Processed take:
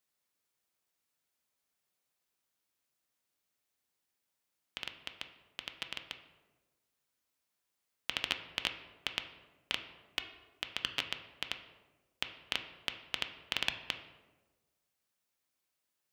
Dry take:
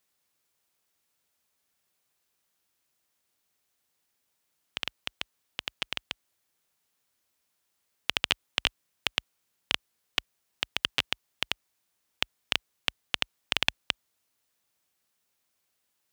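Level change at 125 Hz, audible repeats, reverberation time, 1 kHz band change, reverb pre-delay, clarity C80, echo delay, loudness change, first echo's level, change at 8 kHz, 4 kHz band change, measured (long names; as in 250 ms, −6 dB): −7.0 dB, no echo audible, 1.2 s, −6.5 dB, 3 ms, 12.0 dB, no echo audible, −7.0 dB, no echo audible, −7.5 dB, −7.0 dB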